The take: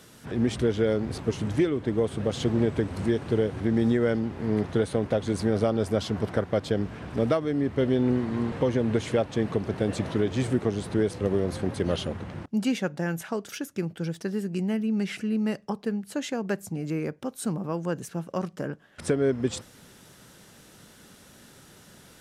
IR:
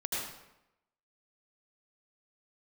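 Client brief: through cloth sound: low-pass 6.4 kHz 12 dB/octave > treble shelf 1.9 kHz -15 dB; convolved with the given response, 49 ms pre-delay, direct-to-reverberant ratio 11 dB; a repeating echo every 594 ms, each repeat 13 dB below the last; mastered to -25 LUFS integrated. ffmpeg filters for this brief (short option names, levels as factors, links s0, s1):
-filter_complex "[0:a]aecho=1:1:594|1188|1782:0.224|0.0493|0.0108,asplit=2[s0][s1];[1:a]atrim=start_sample=2205,adelay=49[s2];[s1][s2]afir=irnorm=-1:irlink=0,volume=0.158[s3];[s0][s3]amix=inputs=2:normalize=0,lowpass=6400,highshelf=f=1900:g=-15,volume=1.41"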